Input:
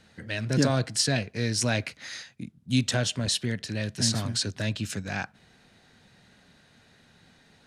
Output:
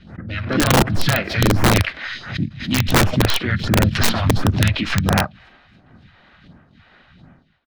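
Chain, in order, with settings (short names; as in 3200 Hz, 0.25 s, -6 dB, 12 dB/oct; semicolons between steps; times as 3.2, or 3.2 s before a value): tracing distortion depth 0.07 ms; harmoniser -4 st -4 dB, -3 st -18 dB, +4 st -17 dB; phaser stages 2, 1.4 Hz, lowest notch 100–3900 Hz; AGC gain up to 9 dB; expander -44 dBFS; bell 450 Hz -8 dB 0.42 oct; in parallel at +1 dB: limiter -11.5 dBFS, peak gain reduction 9 dB; on the sum: air absorption 350 m; on a send: thin delay 0.276 s, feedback 52%, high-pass 2500 Hz, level -24 dB; on the sum: wrapped overs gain 7.5 dB; backwards sustainer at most 98 dB/s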